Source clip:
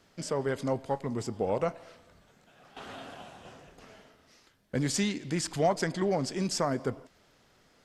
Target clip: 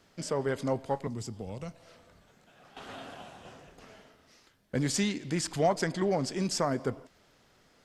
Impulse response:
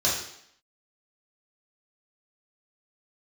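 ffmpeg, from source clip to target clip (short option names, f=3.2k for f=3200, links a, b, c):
-filter_complex "[0:a]asettb=1/sr,asplit=3[a][b][c];[a]atrim=end=1.074[d];[b]atrim=start=1.07:end=2.88,asetpts=PTS-STARTPTS,afade=t=in:d=0.004:c=qsin,afade=t=out:st=1.806:d=0.004:c=qsin,acrossover=split=200|3000[e][f][g];[f]acompressor=threshold=-43dB:ratio=6[h];[e][h][g]amix=inputs=3:normalize=0[i];[c]atrim=start=2.876[j];[d][i]acrossfade=d=0.004:c1=hsin:c2=qsin[k];[k][j]acrossfade=d=0.004:c1=qsin:c2=hsin"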